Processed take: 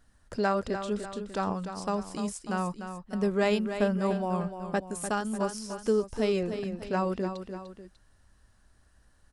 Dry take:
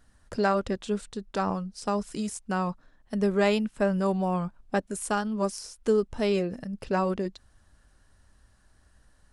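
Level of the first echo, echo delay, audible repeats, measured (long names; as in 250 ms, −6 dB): −9.0 dB, 297 ms, 2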